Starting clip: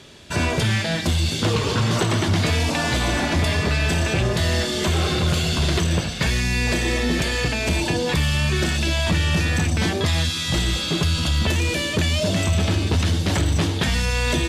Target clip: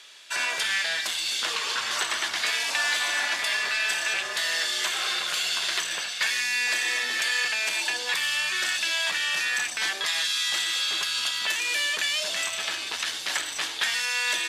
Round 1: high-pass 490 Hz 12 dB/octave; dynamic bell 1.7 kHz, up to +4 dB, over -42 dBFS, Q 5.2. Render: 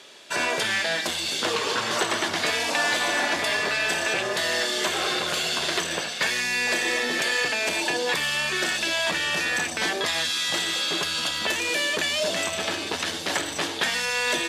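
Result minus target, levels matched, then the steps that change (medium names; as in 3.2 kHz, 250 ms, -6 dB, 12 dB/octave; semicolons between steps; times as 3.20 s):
500 Hz band +12.0 dB
change: high-pass 1.3 kHz 12 dB/octave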